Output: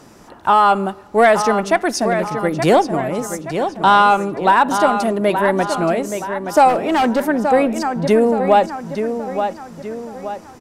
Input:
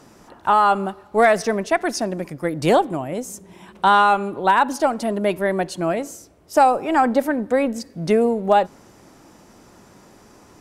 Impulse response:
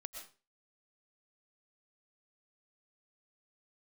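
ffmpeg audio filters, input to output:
-filter_complex "[0:a]asplit=2[link_01][link_02];[link_02]adelay=874,lowpass=frequency=5000:poles=1,volume=-8.5dB,asplit=2[link_03][link_04];[link_04]adelay=874,lowpass=frequency=5000:poles=1,volume=0.45,asplit=2[link_05][link_06];[link_06]adelay=874,lowpass=frequency=5000:poles=1,volume=0.45,asplit=2[link_07][link_08];[link_08]adelay=874,lowpass=frequency=5000:poles=1,volume=0.45,asplit=2[link_09][link_10];[link_10]adelay=874,lowpass=frequency=5000:poles=1,volume=0.45[link_11];[link_01][link_03][link_05][link_07][link_09][link_11]amix=inputs=6:normalize=0,asplit=3[link_12][link_13][link_14];[link_12]afade=type=out:start_time=6.68:duration=0.02[link_15];[link_13]asoftclip=type=hard:threshold=-16dB,afade=type=in:start_time=6.68:duration=0.02,afade=type=out:start_time=7.23:duration=0.02[link_16];[link_14]afade=type=in:start_time=7.23:duration=0.02[link_17];[link_15][link_16][link_17]amix=inputs=3:normalize=0,acontrast=27,volume=-1dB"

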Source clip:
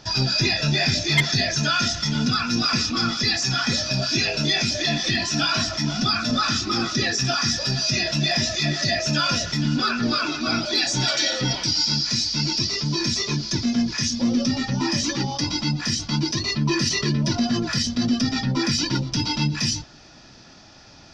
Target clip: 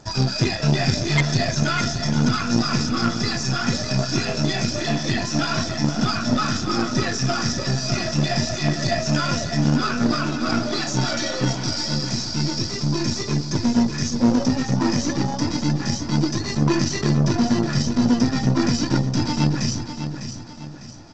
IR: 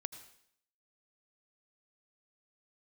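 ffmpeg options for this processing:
-filter_complex "[0:a]equalizer=frequency=3300:width=0.74:gain=-11.5,aeval=exprs='0.251*(cos(1*acos(clip(val(0)/0.251,-1,1)))-cos(1*PI/2))+0.0355*(cos(3*acos(clip(val(0)/0.251,-1,1)))-cos(3*PI/2))+0.0398*(cos(4*acos(clip(val(0)/0.251,-1,1)))-cos(4*PI/2))+0.0355*(cos(6*acos(clip(val(0)/0.251,-1,1)))-cos(6*PI/2))':channel_layout=same,asplit=2[link_01][link_02];[link_02]asoftclip=type=hard:threshold=-22dB,volume=-11dB[link_03];[link_01][link_03]amix=inputs=2:normalize=0,aecho=1:1:602|1204|1806|2408|3010:0.355|0.145|0.0596|0.0245|0.01,volume=4.5dB" -ar 16000 -c:a g722

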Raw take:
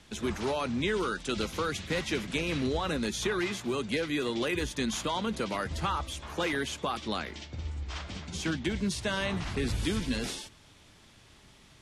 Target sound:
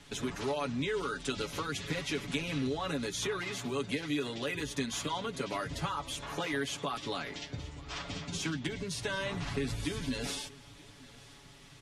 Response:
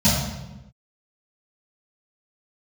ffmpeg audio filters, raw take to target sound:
-af "acompressor=threshold=-34dB:ratio=4,aecho=1:1:7.1:0.82,aecho=1:1:928:0.0708"

